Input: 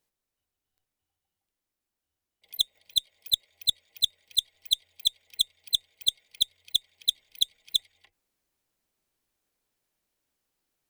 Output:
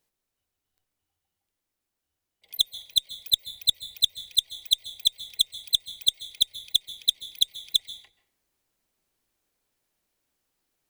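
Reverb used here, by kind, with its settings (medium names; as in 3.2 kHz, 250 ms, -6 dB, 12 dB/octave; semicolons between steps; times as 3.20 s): plate-style reverb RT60 0.57 s, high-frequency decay 0.65×, pre-delay 120 ms, DRR 13.5 dB; trim +2.5 dB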